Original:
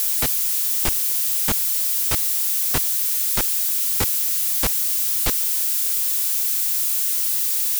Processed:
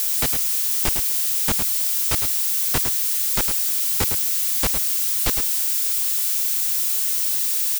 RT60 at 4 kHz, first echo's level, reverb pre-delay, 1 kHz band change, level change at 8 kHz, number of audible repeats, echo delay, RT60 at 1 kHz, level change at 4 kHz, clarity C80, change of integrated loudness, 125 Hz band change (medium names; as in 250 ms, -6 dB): no reverb, -7.5 dB, no reverb, +0.5 dB, -0.5 dB, 1, 107 ms, no reverb, +0.5 dB, no reverb, -0.5 dB, +0.5 dB